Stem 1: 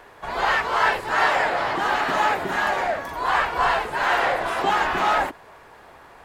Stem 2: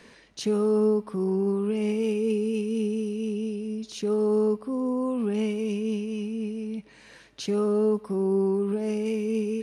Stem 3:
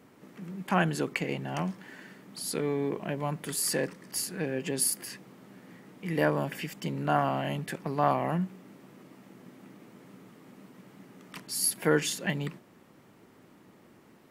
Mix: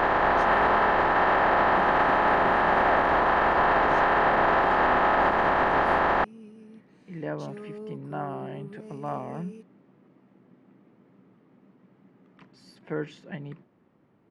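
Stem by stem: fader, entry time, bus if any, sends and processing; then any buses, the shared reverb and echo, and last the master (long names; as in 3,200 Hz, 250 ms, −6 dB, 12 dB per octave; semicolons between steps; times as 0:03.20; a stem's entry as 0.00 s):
+0.5 dB, 0.00 s, bus A, no send, compressor on every frequency bin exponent 0.2
−16.5 dB, 0.00 s, no bus, no send, no processing
−5.0 dB, 1.05 s, bus A, no send, no processing
bus A: 0.0 dB, head-to-tape spacing loss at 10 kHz 34 dB; brickwall limiter −13.5 dBFS, peak gain reduction 9.5 dB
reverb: not used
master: no processing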